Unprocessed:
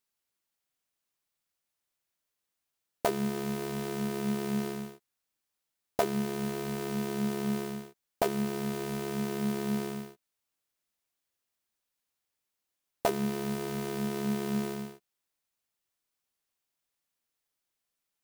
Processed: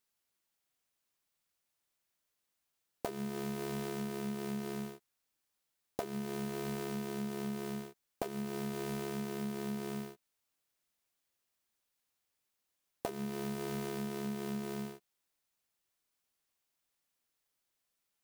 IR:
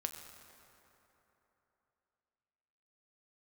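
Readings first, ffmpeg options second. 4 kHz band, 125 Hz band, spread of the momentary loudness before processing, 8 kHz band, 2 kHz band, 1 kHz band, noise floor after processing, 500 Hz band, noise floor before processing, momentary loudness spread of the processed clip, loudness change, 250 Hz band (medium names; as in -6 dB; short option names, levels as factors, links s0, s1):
-6.0 dB, -6.0 dB, 8 LU, -6.0 dB, -6.5 dB, -7.5 dB, -84 dBFS, -6.5 dB, under -85 dBFS, 6 LU, -6.5 dB, -6.5 dB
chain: -af "acompressor=threshold=0.0158:ratio=10,volume=1.12"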